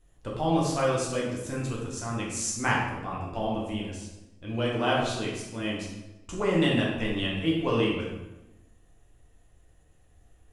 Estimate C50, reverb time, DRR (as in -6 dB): 1.5 dB, 0.95 s, -4.5 dB